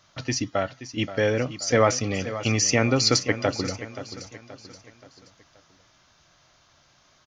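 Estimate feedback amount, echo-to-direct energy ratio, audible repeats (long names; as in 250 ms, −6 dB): 44%, −12.0 dB, 4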